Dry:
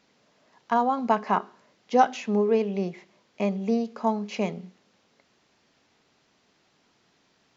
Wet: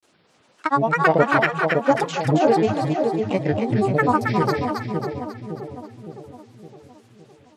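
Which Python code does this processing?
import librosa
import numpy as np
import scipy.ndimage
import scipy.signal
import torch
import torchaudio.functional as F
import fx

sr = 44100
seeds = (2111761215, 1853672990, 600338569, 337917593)

y = fx.granulator(x, sr, seeds[0], grain_ms=100.0, per_s=20.0, spray_ms=100.0, spread_st=12)
y = fx.echo_split(y, sr, split_hz=750.0, low_ms=563, high_ms=271, feedback_pct=52, wet_db=-4)
y = y * 10.0 ** (5.5 / 20.0)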